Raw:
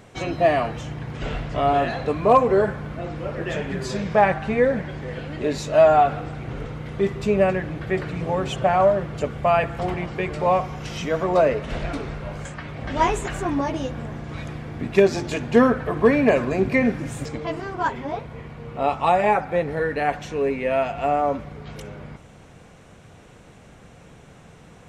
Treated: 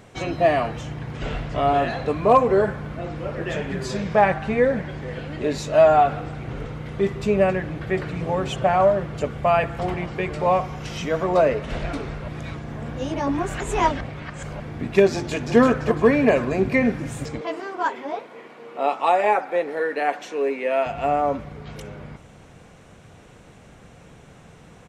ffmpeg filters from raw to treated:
ffmpeg -i in.wav -filter_complex "[0:a]asplit=2[link_01][link_02];[link_02]afade=type=in:start_time=15.12:duration=0.01,afade=type=out:start_time=15.57:duration=0.01,aecho=0:1:340|680|1020|1360:0.562341|0.168702|0.0506107|0.0151832[link_03];[link_01][link_03]amix=inputs=2:normalize=0,asettb=1/sr,asplit=3[link_04][link_05][link_06];[link_04]atrim=end=17.414[link_07];[link_05]atrim=start=17.41:end=20.86,asetpts=PTS-STARTPTS,afade=type=in:duration=0.004:curve=qsin,afade=type=out:start_time=3.446:duration=0.004:curve=qsin,highpass=frequency=280:width=0.5412,highpass=frequency=280:width=1.3066[link_08];[link_06]atrim=start=20.856[link_09];[link_07][link_08]acrossfade=duration=0.004:curve1=hsin:curve2=qsin[link_10];[link_10][link_09]acrossfade=duration=0.004:curve1=qsin:curve2=hsin,asplit=3[link_11][link_12][link_13];[link_11]atrim=end=12.282[link_14];[link_12]atrim=start=12.278:end=14.602,asetpts=PTS-STARTPTS,areverse[link_15];[link_13]atrim=start=14.598[link_16];[link_14][link_15]acrossfade=duration=0.004:curve1=hsin:curve2=hsin[link_17];[link_17][link_16]acrossfade=duration=0.004:curve1=hsin:curve2=hsin" out.wav

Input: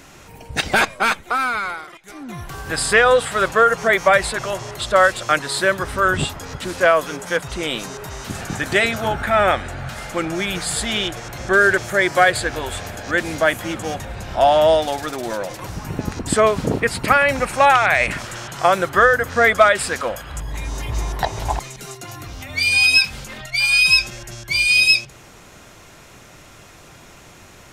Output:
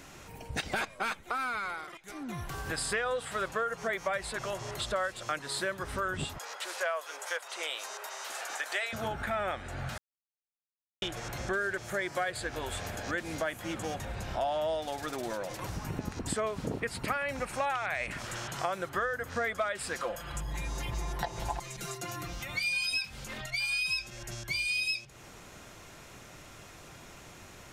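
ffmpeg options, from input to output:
ffmpeg -i in.wav -filter_complex "[0:a]asettb=1/sr,asplit=3[link_01][link_02][link_03];[link_01]atrim=end=6.384[link_04];[link_02]atrim=start=6.38:end=8.93,asetpts=PTS-STARTPTS,afade=type=in:duration=0.004:curve=qsin,afade=type=out:start_time=2.546:duration=0.004:curve=qsin,highpass=frequency=560:width=0.5412,highpass=frequency=560:width=1.3066[link_05];[link_03]atrim=start=8.926[link_06];[link_04][link_05]acrossfade=duration=0.004:curve1=hsin:curve2=qsin[link_07];[link_07][link_06]acrossfade=duration=0.004:curve1=qsin:curve2=hsin,asettb=1/sr,asplit=3[link_08][link_09][link_10];[link_08]atrim=end=19.944[link_11];[link_09]atrim=start=19.94:end=22.93,asetpts=PTS-STARTPTS,afade=type=in:duration=0.004:curve=qsin,afade=type=out:start_time=2.986:duration=0.004:curve=qsin,aecho=1:1:5.8:0.65,atrim=end_sample=131859[link_12];[link_10]atrim=start=22.926[link_13];[link_11][link_12]acrossfade=duration=0.004:curve1=hsin:curve2=qsin[link_14];[link_14][link_13]acrossfade=duration=0.004:curve1=qsin:curve2=hsin,asplit=3[link_15][link_16][link_17];[link_15]atrim=end=9.98,asetpts=PTS-STARTPTS,afade=type=out:start_time=9.976:duration=0.004:curve=hsin[link_18];[link_16]atrim=start=9.98:end=11.02,asetpts=PTS-STARTPTS,volume=0[link_19];[link_17]atrim=start=11.02,asetpts=PTS-STARTPTS,afade=type=in:duration=0.004:curve=hsin[link_20];[link_18][link_19][link_20]concat=n=3:v=0:a=1,acompressor=threshold=-27dB:ratio=3,volume=-6dB" out.wav

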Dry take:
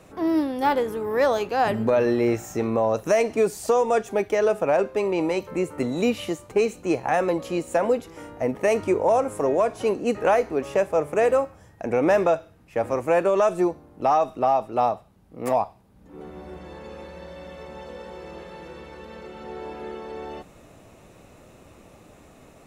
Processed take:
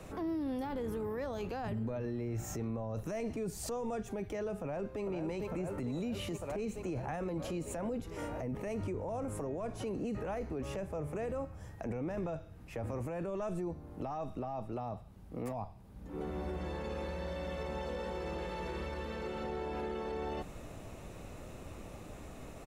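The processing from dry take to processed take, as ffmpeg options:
ffmpeg -i in.wav -filter_complex "[0:a]asplit=2[link_01][link_02];[link_02]afade=type=in:start_time=4.59:duration=0.01,afade=type=out:start_time=5.02:duration=0.01,aecho=0:1:450|900|1350|1800|2250|2700|3150|3600|4050|4500|4950|5400:0.375837|0.281878|0.211409|0.158556|0.118917|0.089188|0.066891|0.0501682|0.0376262|0.0282196|0.0211647|0.0158735[link_03];[link_01][link_03]amix=inputs=2:normalize=0,asplit=2[link_04][link_05];[link_05]afade=type=in:start_time=18.09:duration=0.01,afade=type=out:start_time=18.55:duration=0.01,aecho=0:1:290|580|870|1160|1450|1740|2030|2320|2610|2900:0.501187|0.325772|0.211752|0.137639|0.0894651|0.0581523|0.037799|0.0245693|0.0159701|0.0103805[link_06];[link_04][link_06]amix=inputs=2:normalize=0,lowshelf=frequency=75:gain=11.5,acrossover=split=220[link_07][link_08];[link_08]acompressor=threshold=-33dB:ratio=6[link_09];[link_07][link_09]amix=inputs=2:normalize=0,alimiter=level_in=6.5dB:limit=-24dB:level=0:latency=1:release=14,volume=-6.5dB" out.wav

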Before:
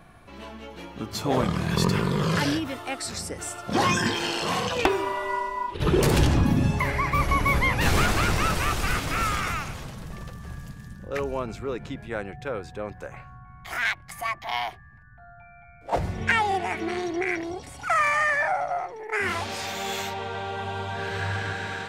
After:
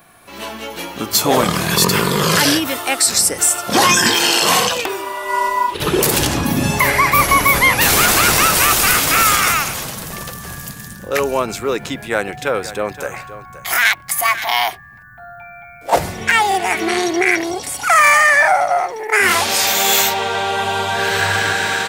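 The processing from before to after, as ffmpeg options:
ffmpeg -i in.wav -filter_complex "[0:a]asplit=3[link_01][link_02][link_03];[link_01]afade=type=out:start_time=12.26:duration=0.02[link_04];[link_02]aecho=1:1:523:0.188,afade=type=in:start_time=12.26:duration=0.02,afade=type=out:start_time=14.56:duration=0.02[link_05];[link_03]afade=type=in:start_time=14.56:duration=0.02[link_06];[link_04][link_05][link_06]amix=inputs=3:normalize=0,aemphasis=mode=production:type=bsi,dynaudnorm=framelen=210:gausssize=3:maxgain=9.5dB,alimiter=level_in=5dB:limit=-1dB:release=50:level=0:latency=1,volume=-1dB" out.wav

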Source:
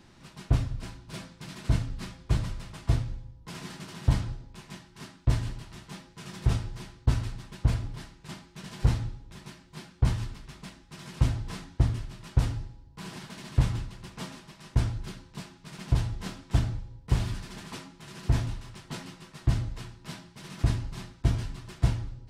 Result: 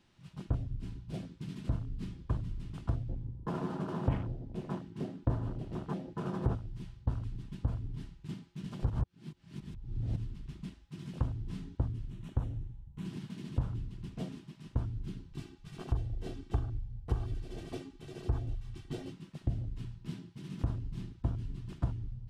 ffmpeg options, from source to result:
ffmpeg -i in.wav -filter_complex "[0:a]asettb=1/sr,asplit=3[link_01][link_02][link_03];[link_01]atrim=end=3.094[link_04];[link_02]atrim=start=3.09:end=6.55,asetpts=PTS-STARTPTS,afade=type=in:duration=0.004:curve=qsin,afade=type=out:start_time=3.456:duration=0.004:curve=qsin,equalizer=frequency=430:width=0.33:gain=11[link_05];[link_03]atrim=start=6.546[link_06];[link_04][link_05]acrossfade=duration=0.004:curve1=hsin:curve2=qsin[link_07];[link_07][link_06]acrossfade=duration=0.004:curve1=qsin:curve2=hsin,asettb=1/sr,asplit=3[link_08][link_09][link_10];[link_08]atrim=end=12.104[link_11];[link_09]atrim=start=12.1:end=13.05,asetpts=PTS-STARTPTS,afade=type=in:duration=0.004:curve=qsin,afade=type=out:start_time=0.946:duration=0.004:curve=qsin,equalizer=frequency=4800:width=4.6:gain=-12.5[link_12];[link_10]atrim=start=13.046[link_13];[link_11][link_12]acrossfade=duration=0.004:curve1=hsin:curve2=qsin[link_14];[link_14][link_13]acrossfade=duration=0.004:curve1=qsin:curve2=hsin,asettb=1/sr,asplit=3[link_15][link_16][link_17];[link_15]atrim=end=15.324[link_18];[link_16]atrim=start=15.32:end=19.12,asetpts=PTS-STARTPTS,afade=type=in:duration=0.004:curve=qsin,afade=type=out:start_time=3.796:duration=0.004:curve=qsin,aecho=1:1:2.6:0.73,atrim=end_sample=167580[link_19];[link_17]atrim=start=19.116[link_20];[link_18][link_19]acrossfade=duration=0.004:curve1=hsin:curve2=qsin[link_21];[link_21][link_20]acrossfade=duration=0.004:curve1=qsin:curve2=hsin,asplit=3[link_22][link_23][link_24];[link_22]atrim=end=8.902[link_25];[link_23]atrim=start=8.898:end=10.162,asetpts=PTS-STARTPTS,areverse[link_26];[link_24]atrim=start=10.158[link_27];[link_25][link_26]acrossfade=duration=0.004:curve1=hsin:curve2=hsin[link_28];[link_28][link_27]acrossfade=duration=0.004:curve1=hsin:curve2=hsin,afwtdn=0.0126,equalizer=frequency=3000:width_type=o:width=0.67:gain=5.5,acompressor=threshold=-37dB:ratio=2.5,volume=3dB" out.wav

